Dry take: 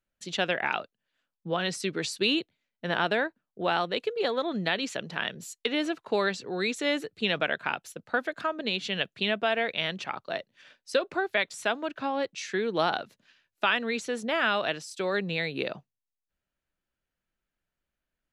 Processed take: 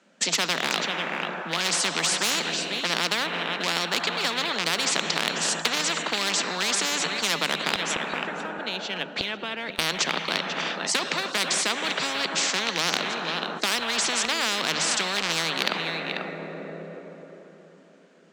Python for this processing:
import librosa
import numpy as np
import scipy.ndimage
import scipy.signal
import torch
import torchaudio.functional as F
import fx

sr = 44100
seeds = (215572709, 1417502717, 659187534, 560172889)

p1 = fx.rattle_buzz(x, sr, strikes_db=-34.0, level_db=-27.0)
p2 = scipy.signal.sosfilt(scipy.signal.butter(6, 8000.0, 'lowpass', fs=sr, output='sos'), p1)
p3 = fx.low_shelf(p2, sr, hz=490.0, db=5.0)
p4 = np.clip(p3, -10.0 ** (-25.5 / 20.0), 10.0 ** (-25.5 / 20.0))
p5 = p3 + (p4 * 10.0 ** (-12.0 / 20.0))
p6 = scipy.signal.sosfilt(scipy.signal.cheby1(6, 3, 160.0, 'highpass', fs=sr, output='sos'), p5)
p7 = fx.gate_flip(p6, sr, shuts_db=-31.0, range_db=-24, at=(7.75, 9.79))
p8 = p7 + fx.echo_single(p7, sr, ms=491, db=-20.5, dry=0)
p9 = fx.rev_plate(p8, sr, seeds[0], rt60_s=3.9, hf_ratio=0.6, predelay_ms=0, drr_db=19.0)
p10 = fx.spectral_comp(p9, sr, ratio=10.0)
y = p10 * 10.0 ** (8.0 / 20.0)